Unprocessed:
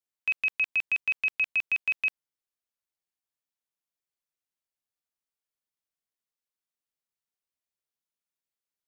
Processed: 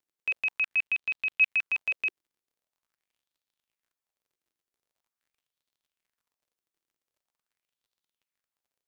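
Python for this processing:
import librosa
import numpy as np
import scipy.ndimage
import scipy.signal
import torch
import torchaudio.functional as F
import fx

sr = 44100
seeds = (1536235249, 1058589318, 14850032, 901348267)

y = fx.high_shelf(x, sr, hz=3900.0, db=-11.0, at=(0.65, 1.41))
y = fx.dmg_crackle(y, sr, seeds[0], per_s=49.0, level_db=-63.0)
y = fx.bell_lfo(y, sr, hz=0.44, low_hz=320.0, high_hz=3900.0, db=8)
y = y * librosa.db_to_amplitude(-2.0)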